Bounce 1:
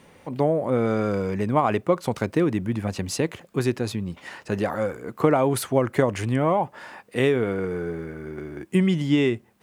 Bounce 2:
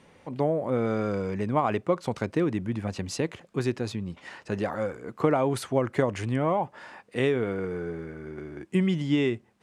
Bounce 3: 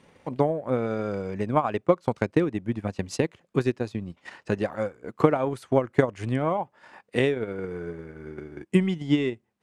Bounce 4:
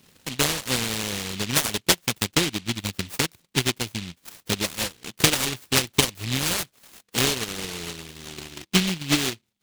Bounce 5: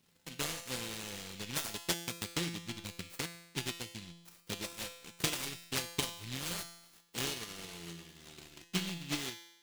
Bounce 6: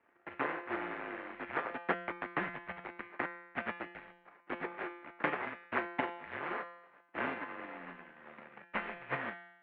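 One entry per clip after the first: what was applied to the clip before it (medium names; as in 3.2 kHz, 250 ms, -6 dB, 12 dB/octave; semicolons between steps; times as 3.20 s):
low-pass 8.4 kHz 12 dB/octave; trim -4 dB
transient shaper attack +7 dB, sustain -11 dB; trim -1 dB
delay time shaken by noise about 3 kHz, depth 0.48 ms
feedback comb 170 Hz, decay 0.88 s, harmonics all, mix 80%; trim -2.5 dB
mistuned SSB -160 Hz 490–2100 Hz; trim +9 dB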